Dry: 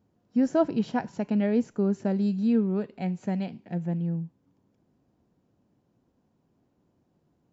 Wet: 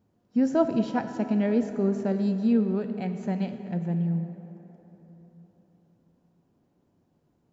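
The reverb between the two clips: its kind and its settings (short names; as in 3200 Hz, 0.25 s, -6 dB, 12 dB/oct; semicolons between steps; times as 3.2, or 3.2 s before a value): plate-style reverb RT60 4 s, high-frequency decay 0.5×, DRR 8 dB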